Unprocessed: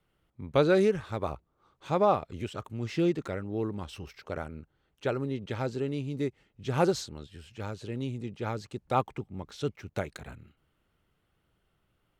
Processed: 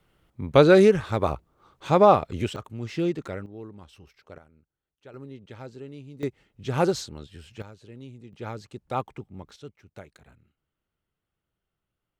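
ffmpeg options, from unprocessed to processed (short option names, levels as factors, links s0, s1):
-af "asetnsamples=n=441:p=0,asendcmd='2.56 volume volume 0.5dB;3.46 volume volume -9dB;4.38 volume volume -17.5dB;5.14 volume volume -9dB;6.23 volume volume 2.5dB;7.62 volume volume -9dB;8.33 volume volume -2dB;9.56 volume volume -11dB',volume=2.51"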